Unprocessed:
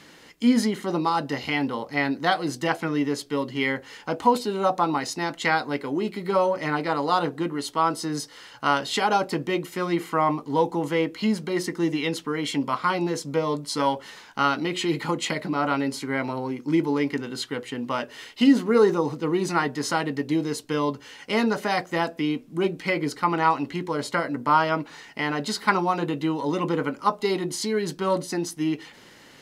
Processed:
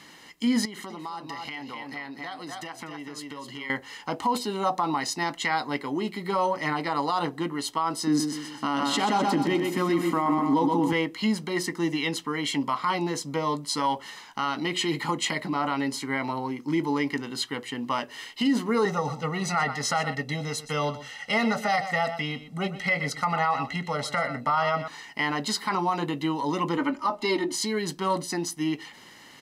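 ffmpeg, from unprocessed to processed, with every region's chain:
-filter_complex "[0:a]asettb=1/sr,asplit=3[a][b][c];[a]atrim=end=0.654[d];[b]atrim=start=0.65:end=3.7,asetpts=PTS-STARTPTS,afade=t=in:d=0.004:c=qsin,afade=t=out:st=3.046:d=0.004:c=qsin,lowshelf=f=370:g=-5,aecho=1:1:248:0.422,atrim=end_sample=134505,acompressor=threshold=-33dB:ratio=8:attack=3.2:release=140:knee=1:detection=peak[e];[c]atrim=start=3.696[f];[d][e]acrossfade=d=0.004:c1=hsin:c2=qsin[g];[g][f]acrossfade=d=0.004:c1=qsin:c2=hsin,asettb=1/sr,asplit=3[h][i][j];[h]atrim=end=8.074[k];[i]atrim=start=8.07:end=10.93,asetpts=PTS-STARTPTS,afade=t=in:d=0.004:c=qsin,afade=t=out:st=2.856:d=0.004:c=qsin,equalizer=f=260:w=1.7:g=13,aecho=1:1:126|252|378|504|630:0.447|0.201|0.0905|0.0407|0.0183,atrim=end_sample=126126[l];[j]atrim=start=10.926[m];[k][l]acrossfade=d=0.004:c1=hsin:c2=qsin[n];[n][m]acrossfade=d=0.004:c1=qsin:c2=hsin,asettb=1/sr,asplit=3[o][p][q];[o]atrim=end=18.854[r];[p]atrim=start=18.85:end=24.88,asetpts=PTS-STARTPTS,afade=t=in:d=0.004:c=qsin,afade=t=out:st=6.026:d=0.004:c=qsin,highshelf=f=9.7k:g=-9,aecho=1:1:1.5:0.93,atrim=end_sample=265923,aecho=1:1:122:0.2,atrim=end_sample=265923[s];[q]atrim=start=24.876[t];[r][s]acrossfade=d=0.004:c1=hsin:c2=qsin[u];[u][t]acrossfade=d=0.004:c1=qsin:c2=hsin,asettb=1/sr,asplit=3[v][w][x];[v]atrim=end=26.774[y];[w]atrim=start=26.77:end=27.55,asetpts=PTS-STARTPTS,afade=t=in:d=0.004:c=qsin,afade=t=out:st=0.776:d=0.004:c=qsin,lowpass=f=4k:p=1,aecho=1:1:3.3:0.97,atrim=end_sample=34398[z];[x]atrim=start=27.546[aa];[y][z]acrossfade=d=0.004:c1=hsin:c2=qsin[ab];[ab][aa]acrossfade=d=0.004:c1=qsin:c2=hsin,lowshelf=f=140:g=-10,aecho=1:1:1:0.42,alimiter=limit=-15.5dB:level=0:latency=1:release=40"

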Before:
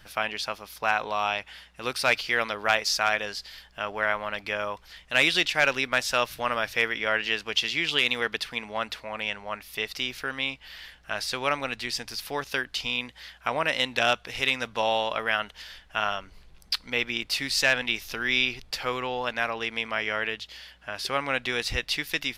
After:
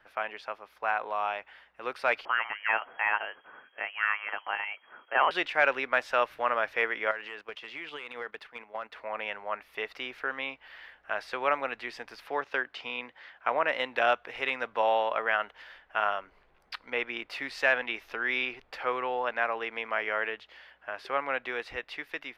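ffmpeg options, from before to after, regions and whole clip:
-filter_complex "[0:a]asettb=1/sr,asplit=3[a][b][c];[a]atrim=end=2.254[d];[b]atrim=start=2.25:end=5.31,asetpts=PTS-STARTPTS,afade=t=in:d=0.004:c=qsin,afade=t=out:st=3.056:d=0.004:c=qsin,volume=13dB,asoftclip=hard,volume=-13dB,lowpass=f=2.8k:t=q:w=0.5098,lowpass=f=2.8k:t=q:w=0.6013,lowpass=f=2.8k:t=q:w=0.9,lowpass=f=2.8k:t=q:w=2.563,afreqshift=-3300[e];[c]atrim=start=5.306[f];[d][e]acrossfade=d=0.004:c1=hsin:c2=qsin[g];[g][f]acrossfade=d=0.004:c1=qsin:c2=hsin,asettb=1/sr,asplit=3[h][i][j];[h]atrim=end=7.114[k];[i]atrim=start=7.11:end=8.96,asetpts=PTS-STARTPTS,afade=t=in:d=0.004:c=qsin,afade=t=out:st=1.846:d=0.004:c=qsin,agate=range=-12dB:threshold=-37dB:ratio=16:release=100:detection=peak,acompressor=threshold=-31dB:ratio=4:attack=3.2:release=140:knee=1:detection=peak,asoftclip=type=hard:threshold=-26.5dB[l];[j]atrim=start=8.956[m];[k][l]acrossfade=d=0.004:c1=hsin:c2=qsin[n];[n][m]acrossfade=d=0.004:c1=qsin:c2=hsin,asettb=1/sr,asplit=3[o][p][q];[o]atrim=end=12.284[r];[p]atrim=start=12.28:end=13.69,asetpts=PTS-STARTPTS,afade=t=in:d=0.004:c=qsin,afade=t=out:st=1.406:d=0.004:c=qsin,highpass=89,equalizer=f=12k:w=1.3:g=-13[s];[q]atrim=start=13.686[t];[r][s]acrossfade=d=0.004:c1=hsin:c2=qsin[u];[u][t]acrossfade=d=0.004:c1=qsin:c2=hsin,acrossover=split=330 2300:gain=0.126 1 0.0708[v][w][x];[v][w][x]amix=inputs=3:normalize=0,dynaudnorm=f=870:g=5:m=4dB,volume=-3dB"

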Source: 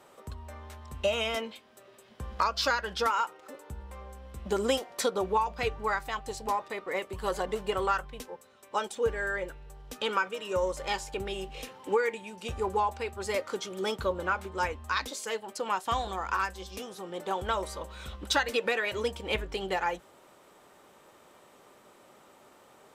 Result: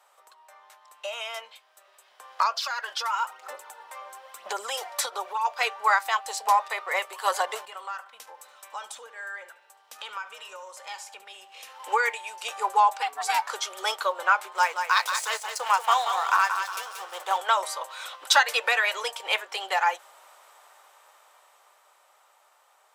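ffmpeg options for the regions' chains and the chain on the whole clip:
-filter_complex "[0:a]asettb=1/sr,asplit=3[a][b][c];[a]atrim=end=2.514[d];[b]atrim=start=2.51:end=5.45,asetpts=PTS-STARTPTS,afade=t=in:d=0.004:c=qsin,afade=t=out:st=2.936:d=0.004:c=qsin,acompressor=threshold=-32dB:ratio=4:attack=3.2:release=140:knee=1:detection=peak,aphaser=in_gain=1:out_gain=1:delay=3.5:decay=0.47:speed=1:type=sinusoidal,aeval=exprs='val(0)+0.00447*(sin(2*PI*50*n/s)+sin(2*PI*2*50*n/s)/2+sin(2*PI*3*50*n/s)/3+sin(2*PI*4*50*n/s)/4+sin(2*PI*5*50*n/s)/5)':c=same[e];[c]atrim=start=5.446[f];[d][e]acrossfade=d=0.004:c1=hsin:c2=qsin[g];[g][f]acrossfade=d=0.004:c1=qsin:c2=hsin,asettb=1/sr,asplit=3[h][i][j];[h]atrim=end=7.654[k];[i]atrim=start=7.65:end=11.8,asetpts=PTS-STARTPTS,afade=t=in:d=0.004:c=qsin,afade=t=out:st=4.146:d=0.004:c=qsin,lowshelf=f=280:t=q:w=1.5:g=8,acompressor=threshold=-48dB:ratio=2.5:attack=3.2:release=140:knee=1:detection=peak,asplit=2[l][m];[m]adelay=73,lowpass=f=3.4k:p=1,volume=-13.5dB,asplit=2[n][o];[o]adelay=73,lowpass=f=3.4k:p=1,volume=0.48,asplit=2[p][q];[q]adelay=73,lowpass=f=3.4k:p=1,volume=0.48,asplit=2[r][s];[s]adelay=73,lowpass=f=3.4k:p=1,volume=0.48,asplit=2[t][u];[u]adelay=73,lowpass=f=3.4k:p=1,volume=0.48[v];[l][n][p][r][t][v]amix=inputs=6:normalize=0,atrim=end_sample=183015[w];[j]atrim=start=11.796[x];[k][w]acrossfade=d=0.004:c1=hsin:c2=qsin[y];[y][x]acrossfade=d=0.004:c1=qsin:c2=hsin,asettb=1/sr,asplit=3[z][aa][ab];[z]atrim=end=13.024[ac];[aa]atrim=start=13.02:end=13.5,asetpts=PTS-STARTPTS,afade=t=in:d=0.004:c=qsin,afade=t=out:st=0.476:d=0.004:c=qsin,aecho=1:1:2.1:0.73,atrim=end_sample=21168,aeval=exprs='val(0)*sin(2*PI*350*n/s)':c=same[ad];[ab]atrim=start=13.496[ae];[ac][ad]acrossfade=d=0.004:c1=hsin:c2=qsin[af];[af][ae]acrossfade=d=0.004:c1=qsin:c2=hsin,asettb=1/sr,asplit=3[ag][ah][ai];[ag]atrim=end=14.534[aj];[ah]atrim=start=14.53:end=17.38,asetpts=PTS-STARTPTS,afade=t=in:d=0.004:c=qsin,afade=t=out:st=2.846:d=0.004:c=qsin,aeval=exprs='sgn(val(0))*max(abs(val(0))-0.00398,0)':c=same,aecho=1:1:180|360|540|720|900:0.447|0.192|0.0826|0.0355|0.0153,atrim=end_sample=125685[ak];[ai]atrim=start=17.376[al];[aj][ak]acrossfade=d=0.004:c1=hsin:c2=qsin[am];[am][al]acrossfade=d=0.004:c1=qsin:c2=hsin,dynaudnorm=f=410:g=13:m=13dB,highpass=f=720:w=0.5412,highpass=f=720:w=1.3066,equalizer=f=2.7k:t=o:w=1.9:g=-2.5,volume=-1.5dB"

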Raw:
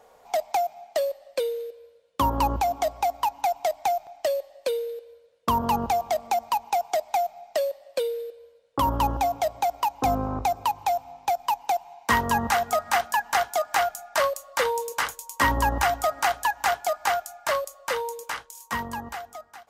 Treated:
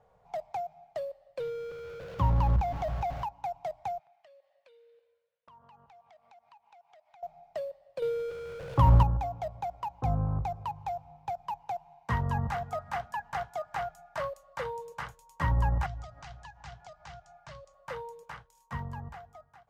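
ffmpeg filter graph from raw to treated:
-filter_complex "[0:a]asettb=1/sr,asplit=3[a][b][c];[a]atrim=end=1.404[d];[b]atrim=start=1.4:end=3.24,asetpts=PTS-STARTPTS,afade=t=in:d=0.004:c=qsin,afade=t=out:st=1.836:d=0.004:c=qsin,aeval=exprs='val(0)+0.5*0.0531*sgn(val(0))':c=same,equalizer=f=9k:w=2.6:g=-8.5[e];[c]atrim=start=3.236[f];[d][e]acrossfade=d=0.004:c1=hsin:c2=qsin[g];[g][f]acrossfade=d=0.004:c1=qsin:c2=hsin,asettb=1/sr,asplit=3[h][i][j];[h]atrim=end=3.994[k];[i]atrim=start=3.99:end=7.23,asetpts=PTS-STARTPTS,afade=t=in:d=0.004:c=qsin,afade=t=out:st=3.236:d=0.004:c=qsin,bandpass=f=2.3k:t=q:w=0.84,acompressor=threshold=-48dB:ratio=3:attack=3.2:release=140:knee=1:detection=peak[l];[j]atrim=start=7.226[m];[k][l]acrossfade=d=0.004:c1=hsin:c2=qsin[n];[n][m]acrossfade=d=0.004:c1=qsin:c2=hsin,asettb=1/sr,asplit=3[o][p][q];[o]atrim=end=8.024[r];[p]atrim=start=8.02:end=9.03,asetpts=PTS-STARTPTS,afade=t=in:d=0.004:c=qsin,afade=t=out:st=1.006:d=0.004:c=qsin,aeval=exprs='val(0)+0.5*0.0266*sgn(val(0))':c=same,acontrast=88[s];[q]atrim=start=9.026[t];[r][s]acrossfade=d=0.004:c1=hsin:c2=qsin[u];[u][t]acrossfade=d=0.004:c1=qsin:c2=hsin,asettb=1/sr,asplit=3[v][w][x];[v]atrim=end=15.864[y];[w]atrim=start=15.86:end=17.74,asetpts=PTS-STARTPTS,afade=t=in:d=0.004:c=qsin,afade=t=out:st=1.876:d=0.004:c=qsin,lowpass=f=7k:w=0.5412,lowpass=f=7k:w=1.3066,acrossover=split=160|3000[z][aa][ab];[aa]acompressor=threshold=-37dB:ratio=5:attack=3.2:release=140:knee=2.83:detection=peak[ac];[z][ac][ab]amix=inputs=3:normalize=0[ad];[x]atrim=start=17.736[ae];[y][ad]acrossfade=d=0.004:c1=hsin:c2=qsin[af];[af][ae]acrossfade=d=0.004:c1=qsin:c2=hsin,lowpass=f=1.2k:p=1,lowshelf=f=200:t=q:w=3:g=9.5,volume=-8.5dB"

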